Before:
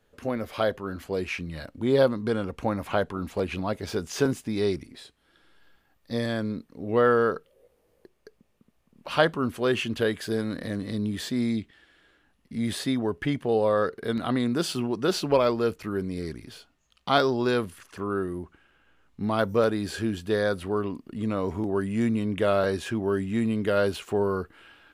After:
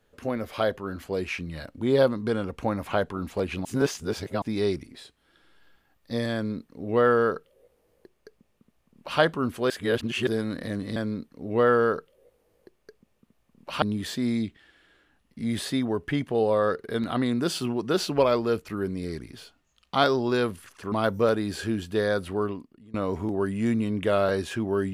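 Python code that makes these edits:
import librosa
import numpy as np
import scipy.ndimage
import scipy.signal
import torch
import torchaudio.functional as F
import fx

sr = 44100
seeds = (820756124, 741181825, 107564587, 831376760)

y = fx.edit(x, sr, fx.reverse_span(start_s=3.65, length_s=0.77),
    fx.duplicate(start_s=6.34, length_s=2.86, to_s=10.96),
    fx.reverse_span(start_s=9.7, length_s=0.57),
    fx.cut(start_s=18.06, length_s=1.21),
    fx.fade_out_to(start_s=20.81, length_s=0.48, curve='qua', floor_db=-22.5), tone=tone)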